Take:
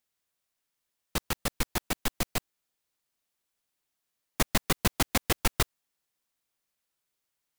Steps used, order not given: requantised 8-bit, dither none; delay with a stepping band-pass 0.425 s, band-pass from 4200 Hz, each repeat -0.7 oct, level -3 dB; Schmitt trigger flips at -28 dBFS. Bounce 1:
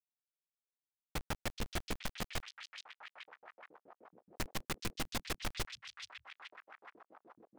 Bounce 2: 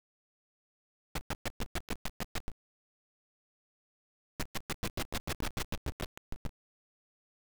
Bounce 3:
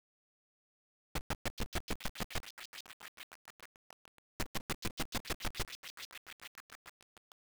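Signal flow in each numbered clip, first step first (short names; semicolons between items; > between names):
Schmitt trigger > requantised > delay with a stepping band-pass; delay with a stepping band-pass > Schmitt trigger > requantised; Schmitt trigger > delay with a stepping band-pass > requantised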